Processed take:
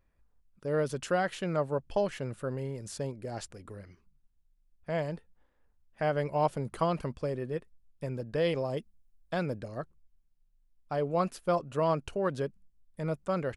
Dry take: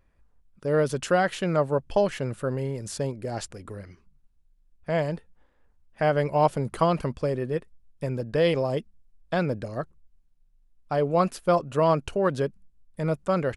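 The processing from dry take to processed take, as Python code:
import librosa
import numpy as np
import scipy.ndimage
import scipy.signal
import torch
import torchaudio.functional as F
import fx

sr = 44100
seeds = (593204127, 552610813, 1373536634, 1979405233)

y = fx.high_shelf(x, sr, hz=8800.0, db=9.0, at=(8.77, 9.57))
y = y * librosa.db_to_amplitude(-6.5)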